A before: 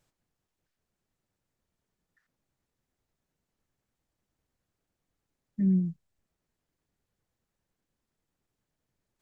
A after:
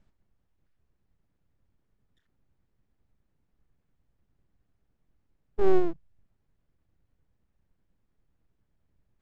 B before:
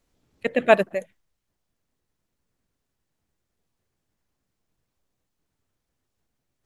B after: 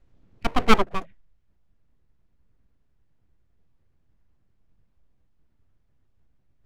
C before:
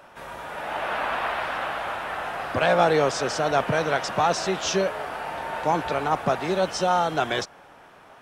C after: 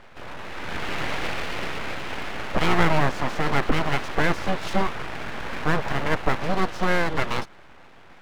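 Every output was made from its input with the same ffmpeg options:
-filter_complex "[0:a]aemphasis=mode=reproduction:type=riaa,acrossover=split=4100[link_01][link_02];[link_02]acompressor=threshold=-48dB:ratio=4:attack=1:release=60[link_03];[link_01][link_03]amix=inputs=2:normalize=0,equalizer=frequency=2200:width=0.38:gain=4.5,aeval=exprs='abs(val(0))':channel_layout=same,volume=-1.5dB"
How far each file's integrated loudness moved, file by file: +0.5, −2.0, −1.5 LU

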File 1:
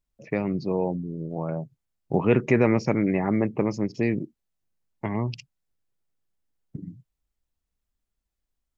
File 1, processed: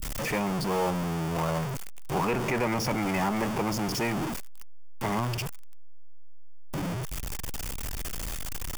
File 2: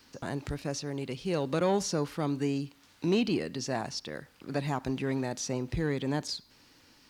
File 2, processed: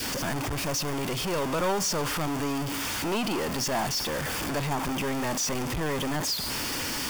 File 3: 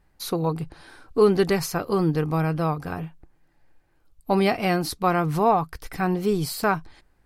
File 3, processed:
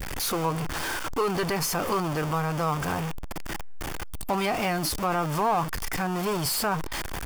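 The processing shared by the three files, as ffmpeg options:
-filter_complex "[0:a]aeval=exprs='val(0)+0.5*0.0562*sgn(val(0))':channel_layout=same,bandreject=frequency=4000:width=8.2,adynamicequalizer=threshold=0.0126:dfrequency=1000:dqfactor=2.5:tfrequency=1000:tqfactor=2.5:attack=5:release=100:ratio=0.375:range=2:mode=boostabove:tftype=bell,acrossover=split=660[link_01][link_02];[link_01]aeval=exprs='(tanh(25.1*val(0)+0.25)-tanh(0.25))/25.1':channel_layout=same[link_03];[link_02]alimiter=limit=-19dB:level=0:latency=1:release=118[link_04];[link_03][link_04]amix=inputs=2:normalize=0"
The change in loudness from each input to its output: −4.5, +4.0, −4.0 LU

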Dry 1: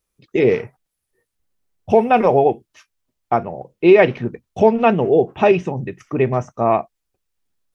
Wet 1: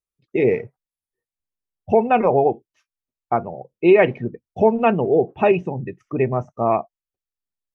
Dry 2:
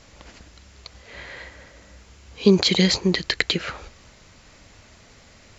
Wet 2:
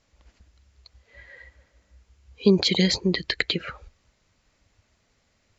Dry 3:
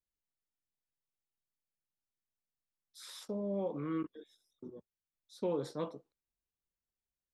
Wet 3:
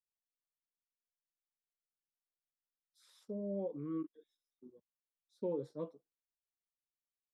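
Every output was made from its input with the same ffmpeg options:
-af "afftdn=noise_reduction=15:noise_floor=-31,volume=-2.5dB"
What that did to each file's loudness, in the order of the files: −2.5, −2.5, −3.0 LU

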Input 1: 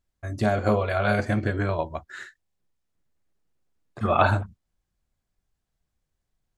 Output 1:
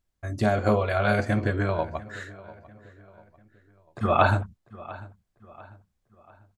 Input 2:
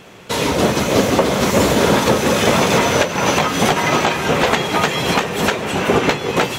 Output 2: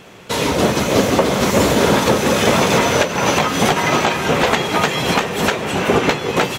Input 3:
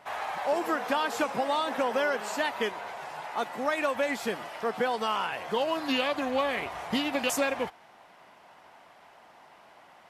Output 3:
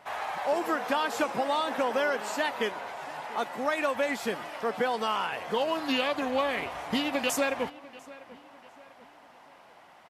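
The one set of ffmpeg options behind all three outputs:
-filter_complex "[0:a]asplit=2[link_01][link_02];[link_02]adelay=695,lowpass=frequency=3600:poles=1,volume=-19dB,asplit=2[link_03][link_04];[link_04]adelay=695,lowpass=frequency=3600:poles=1,volume=0.43,asplit=2[link_05][link_06];[link_06]adelay=695,lowpass=frequency=3600:poles=1,volume=0.43[link_07];[link_01][link_03][link_05][link_07]amix=inputs=4:normalize=0"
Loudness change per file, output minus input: −0.5, 0.0, 0.0 LU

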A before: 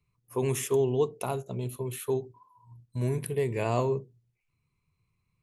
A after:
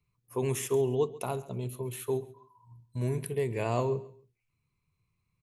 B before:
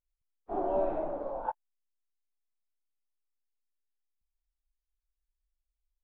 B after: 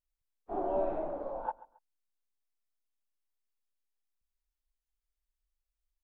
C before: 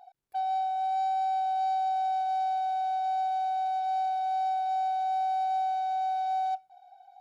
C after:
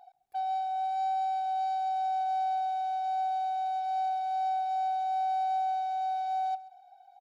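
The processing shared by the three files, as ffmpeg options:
-af "aecho=1:1:136|272:0.112|0.0314,volume=-2dB"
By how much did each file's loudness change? −2.0, −2.0, −1.5 LU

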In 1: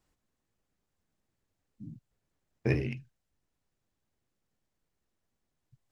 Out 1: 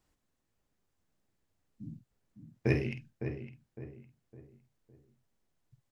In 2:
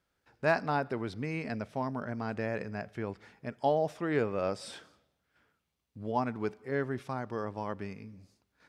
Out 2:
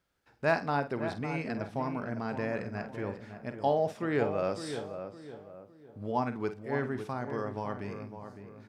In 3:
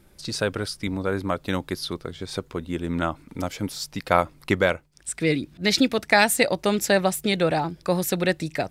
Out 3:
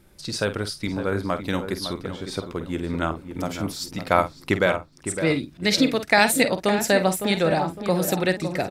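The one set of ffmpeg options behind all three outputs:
-filter_complex "[0:a]asplit=2[link_01][link_02];[link_02]adelay=49,volume=-11dB[link_03];[link_01][link_03]amix=inputs=2:normalize=0,asplit=2[link_04][link_05];[link_05]adelay=558,lowpass=frequency=1500:poles=1,volume=-8.5dB,asplit=2[link_06][link_07];[link_07]adelay=558,lowpass=frequency=1500:poles=1,volume=0.39,asplit=2[link_08][link_09];[link_09]adelay=558,lowpass=frequency=1500:poles=1,volume=0.39,asplit=2[link_10][link_11];[link_11]adelay=558,lowpass=frequency=1500:poles=1,volume=0.39[link_12];[link_04][link_06][link_08][link_10][link_12]amix=inputs=5:normalize=0"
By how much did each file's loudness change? −4.0, +0.5, +1.0 LU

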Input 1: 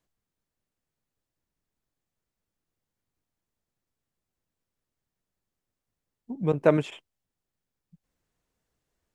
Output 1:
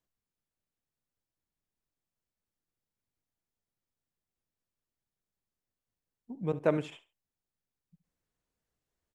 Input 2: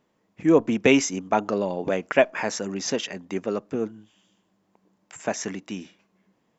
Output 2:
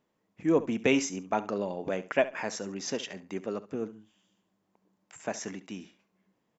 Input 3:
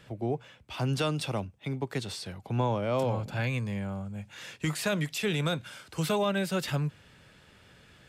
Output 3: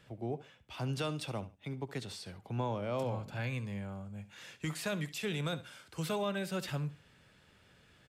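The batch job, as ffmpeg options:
-af "aecho=1:1:69|138:0.158|0.0365,volume=-7dB"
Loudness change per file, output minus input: −7.0, −7.0, −7.0 LU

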